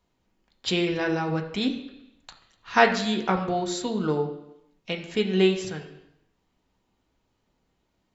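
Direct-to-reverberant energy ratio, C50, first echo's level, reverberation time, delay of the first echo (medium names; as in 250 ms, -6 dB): 2.0 dB, 9.5 dB, no echo, 0.85 s, no echo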